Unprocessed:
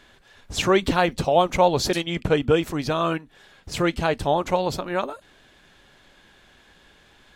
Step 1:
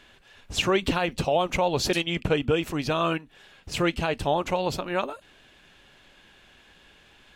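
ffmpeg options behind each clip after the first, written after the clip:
-af "equalizer=f=2.7k:w=3.4:g=6.5,alimiter=limit=-11dB:level=0:latency=1:release=117,volume=-2dB"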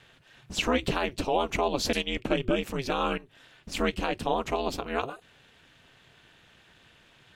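-af "aeval=exprs='val(0)*sin(2*PI*130*n/s)':c=same"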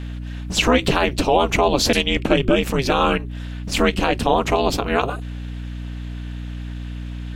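-filter_complex "[0:a]aeval=exprs='val(0)+0.01*(sin(2*PI*60*n/s)+sin(2*PI*2*60*n/s)/2+sin(2*PI*3*60*n/s)/3+sin(2*PI*4*60*n/s)/4+sin(2*PI*5*60*n/s)/5)':c=same,asplit=2[a][b];[b]alimiter=limit=-21dB:level=0:latency=1,volume=-1.5dB[c];[a][c]amix=inputs=2:normalize=0,volume=6.5dB"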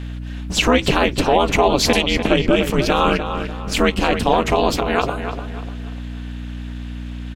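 -filter_complex "[0:a]asplit=2[a][b];[b]adelay=296,lowpass=f=3.8k:p=1,volume=-8.5dB,asplit=2[c][d];[d]adelay=296,lowpass=f=3.8k:p=1,volume=0.37,asplit=2[e][f];[f]adelay=296,lowpass=f=3.8k:p=1,volume=0.37,asplit=2[g][h];[h]adelay=296,lowpass=f=3.8k:p=1,volume=0.37[i];[a][c][e][g][i]amix=inputs=5:normalize=0,volume=1dB"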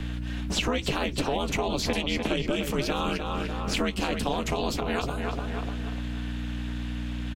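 -filter_complex "[0:a]acrossover=split=96|270|3800[a][b][c][d];[a]acompressor=threshold=-36dB:ratio=4[e];[b]acompressor=threshold=-34dB:ratio=4[f];[c]acompressor=threshold=-30dB:ratio=4[g];[d]acompressor=threshold=-37dB:ratio=4[h];[e][f][g][h]amix=inputs=4:normalize=0,asplit=2[i][j];[j]adelay=14,volume=-13.5dB[k];[i][k]amix=inputs=2:normalize=0"

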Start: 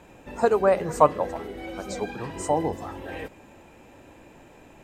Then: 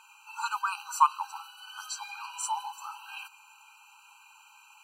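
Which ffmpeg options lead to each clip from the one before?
-af "tiltshelf=f=1.1k:g=-7.5,afftfilt=real='re*eq(mod(floor(b*sr/1024/790),2),1)':imag='im*eq(mod(floor(b*sr/1024/790),2),1)':win_size=1024:overlap=0.75"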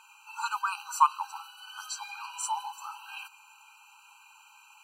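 -af anull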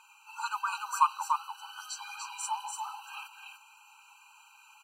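-af "aecho=1:1:293:0.596,flanger=delay=0.8:depth=3.1:regen=-62:speed=1.8:shape=triangular,volume=1.5dB"

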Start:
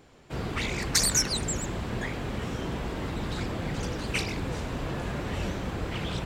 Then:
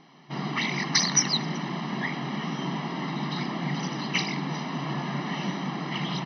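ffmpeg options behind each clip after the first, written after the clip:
-af "afftfilt=real='re*between(b*sr/4096,130,6100)':imag='im*between(b*sr/4096,130,6100)':win_size=4096:overlap=0.75,aecho=1:1:1:0.73,volume=2dB"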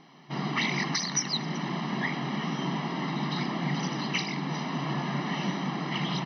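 -af "alimiter=limit=-16dB:level=0:latency=1:release=488"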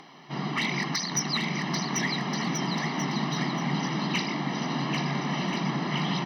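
-filter_complex "[0:a]acrossover=split=320[a][b];[b]acompressor=mode=upward:threshold=-44dB:ratio=2.5[c];[a][c]amix=inputs=2:normalize=0,asoftclip=type=hard:threshold=-20dB,aecho=1:1:790|1382|1827|2160|2410:0.631|0.398|0.251|0.158|0.1"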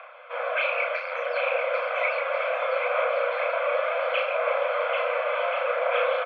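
-filter_complex "[0:a]aphaser=in_gain=1:out_gain=1:delay=3.7:decay=0.25:speed=0.67:type=sinusoidal,asplit=2[a][b];[b]adelay=34,volume=-4dB[c];[a][c]amix=inputs=2:normalize=0,highpass=f=160:t=q:w=0.5412,highpass=f=160:t=q:w=1.307,lowpass=f=2.5k:t=q:w=0.5176,lowpass=f=2.5k:t=q:w=0.7071,lowpass=f=2.5k:t=q:w=1.932,afreqshift=340,volume=2.5dB"

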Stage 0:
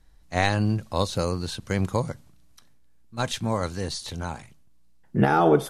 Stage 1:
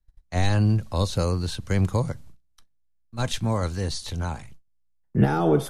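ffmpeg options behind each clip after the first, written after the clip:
-filter_complex "[0:a]agate=range=-24dB:threshold=-50dB:ratio=16:detection=peak,acrossover=split=240|410|3800[a][b][c][d];[a]lowshelf=f=89:g=12[e];[c]alimiter=limit=-20.5dB:level=0:latency=1:release=12[f];[e][b][f][d]amix=inputs=4:normalize=0"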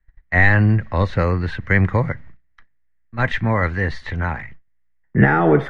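-af "lowpass=f=1.9k:t=q:w=8.2,volume=5dB"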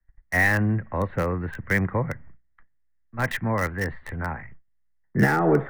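-filter_complex "[0:a]acrossover=split=110|480|2200[a][b][c][d];[a]acompressor=threshold=-31dB:ratio=6[e];[d]acrusher=bits=4:mix=0:aa=0.000001[f];[e][b][c][f]amix=inputs=4:normalize=0,volume=-5dB"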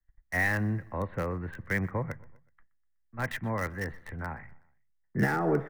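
-af "aecho=1:1:124|248|372:0.0708|0.034|0.0163,volume=-7dB"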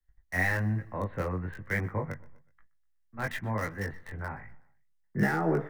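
-af "flanger=delay=18.5:depth=3.2:speed=1.1,volume=2.5dB"

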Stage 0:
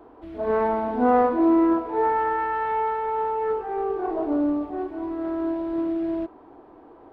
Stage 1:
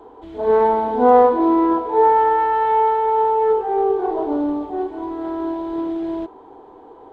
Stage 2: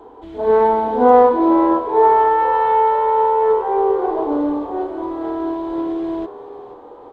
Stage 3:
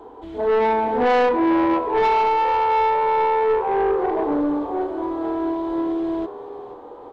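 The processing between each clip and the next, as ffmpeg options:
-af "superequalizer=7b=2.24:9b=2.24:13b=2.24:14b=1.58:15b=2.82,volume=1.5dB"
-filter_complex "[0:a]asplit=5[a][b][c][d][e];[b]adelay=482,afreqshift=78,volume=-15dB[f];[c]adelay=964,afreqshift=156,volume=-21.4dB[g];[d]adelay=1446,afreqshift=234,volume=-27.8dB[h];[e]adelay=1928,afreqshift=312,volume=-34.1dB[i];[a][f][g][h][i]amix=inputs=5:normalize=0,volume=1.5dB"
-af "asoftclip=type=tanh:threshold=-14.5dB"

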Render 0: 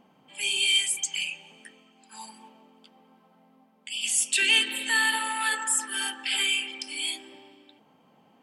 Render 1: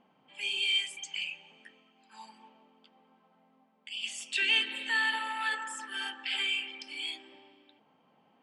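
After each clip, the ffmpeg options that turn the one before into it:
-af "lowpass=3.9k,lowshelf=f=430:g=-5,volume=-4dB"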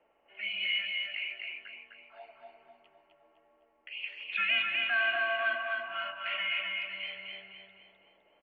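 -filter_complex "[0:a]aeval=exprs='val(0)+0.00224*(sin(2*PI*50*n/s)+sin(2*PI*2*50*n/s)/2+sin(2*PI*3*50*n/s)/3+sin(2*PI*4*50*n/s)/4+sin(2*PI*5*50*n/s)/5)':c=same,asplit=2[a][b];[b]aecho=0:1:255|510|765|1020|1275:0.668|0.281|0.118|0.0495|0.0208[c];[a][c]amix=inputs=2:normalize=0,highpass=f=540:t=q:w=0.5412,highpass=f=540:t=q:w=1.307,lowpass=f=3k:t=q:w=0.5176,lowpass=f=3k:t=q:w=0.7071,lowpass=f=3k:t=q:w=1.932,afreqshift=-200"

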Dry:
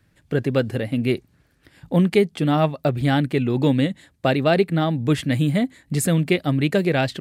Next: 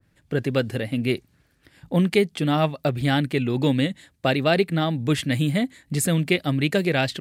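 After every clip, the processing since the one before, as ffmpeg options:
-af "adynamicequalizer=threshold=0.0224:dfrequency=1600:dqfactor=0.7:tfrequency=1600:tqfactor=0.7:attack=5:release=100:ratio=0.375:range=2.5:mode=boostabove:tftype=highshelf,volume=-2.5dB"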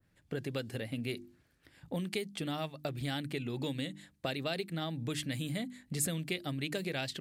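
-filter_complex "[0:a]bandreject=f=50:t=h:w=6,bandreject=f=100:t=h:w=6,bandreject=f=150:t=h:w=6,bandreject=f=200:t=h:w=6,bandreject=f=250:t=h:w=6,bandreject=f=300:t=h:w=6,bandreject=f=350:t=h:w=6,acrossover=split=3500[a][b];[a]acompressor=threshold=-27dB:ratio=6[c];[c][b]amix=inputs=2:normalize=0,volume=-7dB"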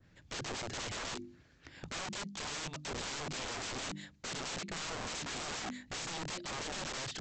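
-af "alimiter=level_in=4.5dB:limit=-24dB:level=0:latency=1:release=448,volume=-4.5dB,aresample=16000,aeval=exprs='(mod(150*val(0)+1,2)-1)/150':c=same,aresample=44100,volume=8dB"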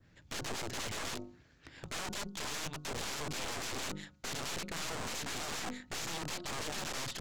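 -af "aeval=exprs='0.0299*(cos(1*acos(clip(val(0)/0.0299,-1,1)))-cos(1*PI/2))+0.0075*(cos(4*acos(clip(val(0)/0.0299,-1,1)))-cos(4*PI/2))':c=same,bandreject=f=181.9:t=h:w=4,bandreject=f=363.8:t=h:w=4,bandreject=f=545.7:t=h:w=4,bandreject=f=727.6:t=h:w=4,bandreject=f=909.5:t=h:w=4,bandreject=f=1.0914k:t=h:w=4,bandreject=f=1.2733k:t=h:w=4,bandreject=f=1.4552k:t=h:w=4"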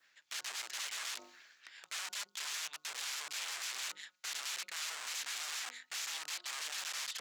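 -af "highpass=1.5k,areverse,acompressor=mode=upward:threshold=-46dB:ratio=2.5,areverse,volume=1dB"

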